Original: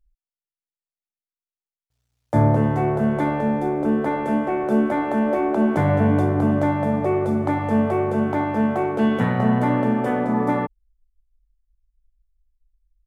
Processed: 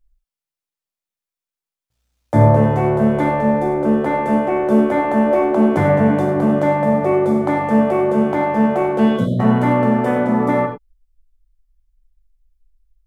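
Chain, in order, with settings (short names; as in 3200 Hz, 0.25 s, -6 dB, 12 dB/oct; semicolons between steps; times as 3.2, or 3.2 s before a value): spectral delete 9.17–9.4, 710–3000 Hz; non-linear reverb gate 0.12 s flat, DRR 3 dB; gain +3 dB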